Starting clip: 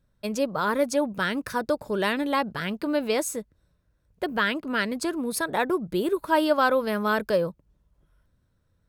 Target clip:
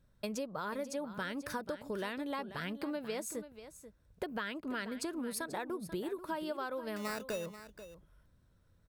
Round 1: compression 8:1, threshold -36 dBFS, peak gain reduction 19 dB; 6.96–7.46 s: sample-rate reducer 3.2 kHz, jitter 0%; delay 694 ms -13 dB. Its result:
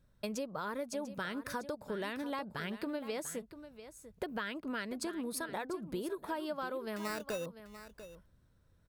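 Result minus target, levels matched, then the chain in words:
echo 207 ms late
compression 8:1, threshold -36 dBFS, peak gain reduction 19 dB; 6.96–7.46 s: sample-rate reducer 3.2 kHz, jitter 0%; delay 487 ms -13 dB

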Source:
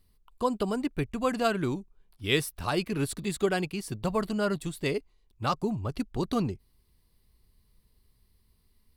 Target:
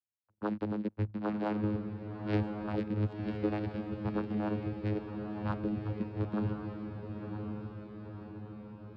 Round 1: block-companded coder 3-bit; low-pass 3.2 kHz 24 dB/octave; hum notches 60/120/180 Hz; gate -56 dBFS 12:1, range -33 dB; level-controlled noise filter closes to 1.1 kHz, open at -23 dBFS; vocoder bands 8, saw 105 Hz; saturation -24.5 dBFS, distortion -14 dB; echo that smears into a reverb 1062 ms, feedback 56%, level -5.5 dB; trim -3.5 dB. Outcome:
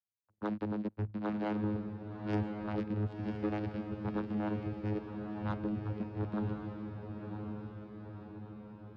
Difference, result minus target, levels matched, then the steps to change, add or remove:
saturation: distortion +15 dB
change: saturation -14 dBFS, distortion -30 dB

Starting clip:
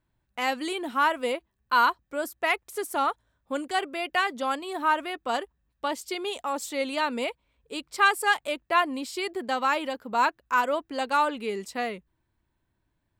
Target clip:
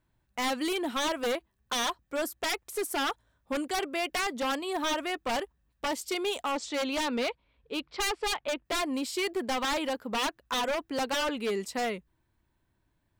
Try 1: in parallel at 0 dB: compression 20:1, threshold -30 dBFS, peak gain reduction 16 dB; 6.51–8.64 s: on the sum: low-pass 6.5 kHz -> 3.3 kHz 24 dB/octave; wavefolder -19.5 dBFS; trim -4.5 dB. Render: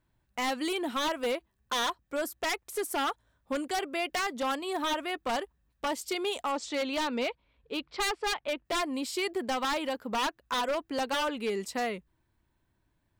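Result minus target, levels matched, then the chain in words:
compression: peak gain reduction +7 dB
in parallel at 0 dB: compression 20:1, threshold -22.5 dBFS, peak gain reduction 9 dB; 6.51–8.64 s: on the sum: low-pass 6.5 kHz -> 3.3 kHz 24 dB/octave; wavefolder -19.5 dBFS; trim -4.5 dB

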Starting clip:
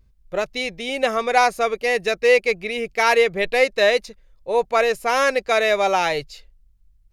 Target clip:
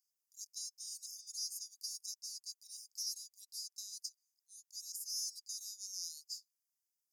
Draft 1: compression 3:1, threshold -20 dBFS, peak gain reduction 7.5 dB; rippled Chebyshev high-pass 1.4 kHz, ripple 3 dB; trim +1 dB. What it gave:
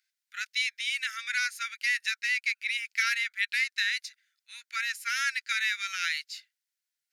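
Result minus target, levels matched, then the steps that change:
4 kHz band -3.0 dB
change: rippled Chebyshev high-pass 4.8 kHz, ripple 3 dB

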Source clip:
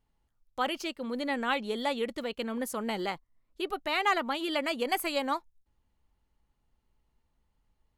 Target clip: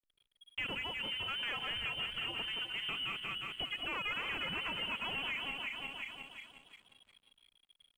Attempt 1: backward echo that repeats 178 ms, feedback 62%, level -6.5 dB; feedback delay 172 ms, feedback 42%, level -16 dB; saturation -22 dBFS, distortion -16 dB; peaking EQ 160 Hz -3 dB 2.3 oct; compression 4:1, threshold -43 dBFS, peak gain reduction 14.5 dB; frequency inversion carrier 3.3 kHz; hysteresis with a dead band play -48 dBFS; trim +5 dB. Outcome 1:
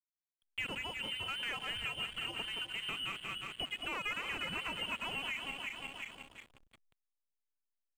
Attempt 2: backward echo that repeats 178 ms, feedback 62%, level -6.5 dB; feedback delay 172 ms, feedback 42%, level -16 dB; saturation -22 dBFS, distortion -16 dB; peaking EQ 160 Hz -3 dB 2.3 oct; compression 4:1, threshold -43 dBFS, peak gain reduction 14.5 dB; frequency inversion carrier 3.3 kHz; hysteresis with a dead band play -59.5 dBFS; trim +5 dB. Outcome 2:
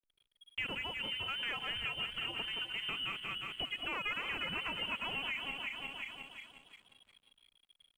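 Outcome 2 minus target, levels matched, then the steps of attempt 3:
saturation: distortion -6 dB
backward echo that repeats 178 ms, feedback 62%, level -6.5 dB; feedback delay 172 ms, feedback 42%, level -16 dB; saturation -29 dBFS, distortion -9 dB; peaking EQ 160 Hz -3 dB 2.3 oct; compression 4:1, threshold -43 dBFS, peak gain reduction 10.5 dB; frequency inversion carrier 3.3 kHz; hysteresis with a dead band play -59.5 dBFS; trim +5 dB

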